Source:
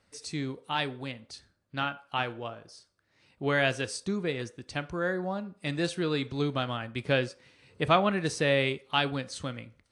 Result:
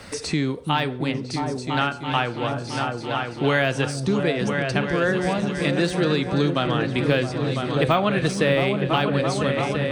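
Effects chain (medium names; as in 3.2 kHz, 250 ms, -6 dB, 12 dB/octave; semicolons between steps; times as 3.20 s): de-esser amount 85%; on a send: delay with an opening low-pass 334 ms, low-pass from 200 Hz, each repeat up 2 oct, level -3 dB; on the sum: three bands compressed up and down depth 70%; trim +7 dB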